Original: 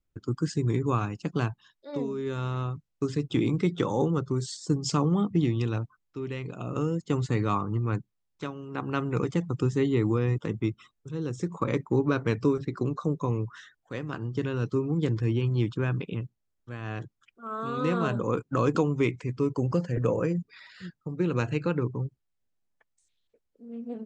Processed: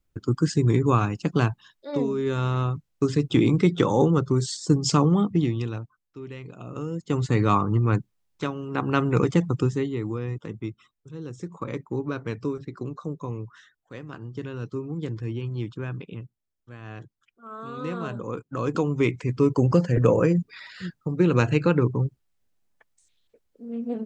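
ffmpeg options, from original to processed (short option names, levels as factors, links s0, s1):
-af "volume=25.1,afade=t=out:st=4.92:d=0.9:silence=0.316228,afade=t=in:st=6.86:d=0.65:silence=0.298538,afade=t=out:st=9.43:d=0.47:silence=0.281838,afade=t=in:st=18.55:d=0.97:silence=0.266073"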